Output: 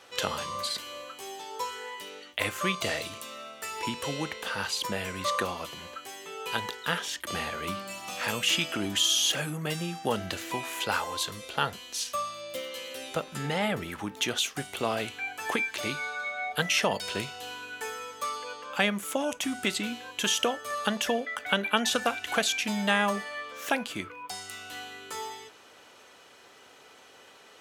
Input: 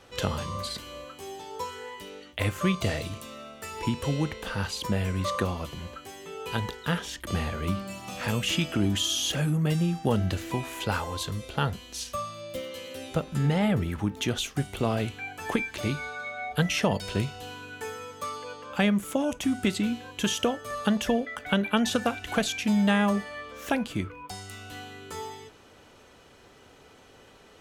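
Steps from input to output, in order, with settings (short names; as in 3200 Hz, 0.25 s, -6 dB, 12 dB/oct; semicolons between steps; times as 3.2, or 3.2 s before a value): HPF 770 Hz 6 dB/oct; gain +3.5 dB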